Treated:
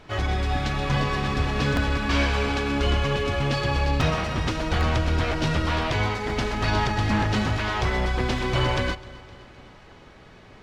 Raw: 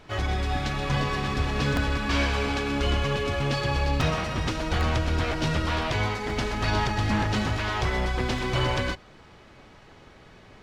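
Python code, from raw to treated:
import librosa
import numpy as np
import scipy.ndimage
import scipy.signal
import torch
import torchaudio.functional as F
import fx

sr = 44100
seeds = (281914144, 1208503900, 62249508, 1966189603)

p1 = fx.high_shelf(x, sr, hz=7000.0, db=-4.0)
p2 = p1 + fx.echo_feedback(p1, sr, ms=257, feedback_pct=60, wet_db=-21, dry=0)
y = F.gain(torch.from_numpy(p2), 2.0).numpy()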